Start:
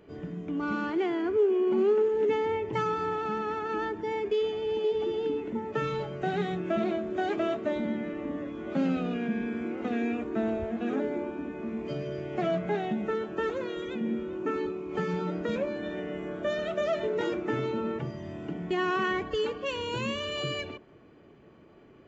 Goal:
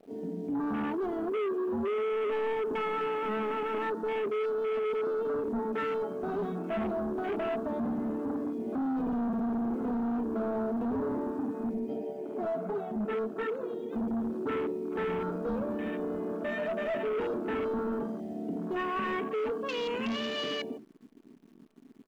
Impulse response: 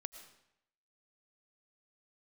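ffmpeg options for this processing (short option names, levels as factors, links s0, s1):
-filter_complex "[0:a]lowshelf=f=180:t=q:w=3:g=-9.5,alimiter=limit=0.0944:level=0:latency=1:release=18,aecho=1:1:4.5:0.58,bandreject=f=74.82:t=h:w=4,bandreject=f=149.64:t=h:w=4,bandreject=f=224.46:t=h:w=4,bandreject=f=299.28:t=h:w=4,bandreject=f=374.1:t=h:w=4,bandreject=f=448.92:t=h:w=4,bandreject=f=523.74:t=h:w=4,bandreject=f=598.56:t=h:w=4,bandreject=f=673.38:t=h:w=4,bandreject=f=748.2:t=h:w=4,bandreject=f=823.02:t=h:w=4,acrusher=bits=9:dc=4:mix=0:aa=0.000001,asplit=3[s0][s1][s2];[s0]afade=t=out:st=11.78:d=0.02[s3];[s1]flanger=delay=1.4:depth=7.7:regen=-12:speed=1.4:shape=sinusoidal,afade=t=in:st=11.78:d=0.02,afade=t=out:st=13.91:d=0.02[s4];[s2]afade=t=in:st=13.91:d=0.02[s5];[s3][s4][s5]amix=inputs=3:normalize=0,volume=28.2,asoftclip=hard,volume=0.0355,afwtdn=0.0126"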